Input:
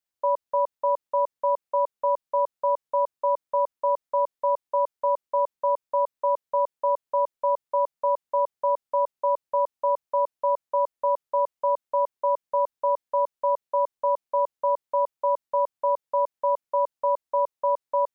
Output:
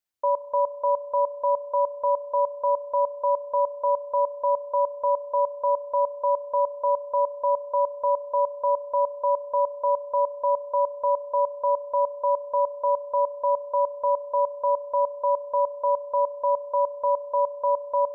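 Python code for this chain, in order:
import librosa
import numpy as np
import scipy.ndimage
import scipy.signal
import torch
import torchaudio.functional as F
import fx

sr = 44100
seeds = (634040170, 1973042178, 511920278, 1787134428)

y = fx.rev_spring(x, sr, rt60_s=2.2, pass_ms=(33,), chirp_ms=70, drr_db=14.0)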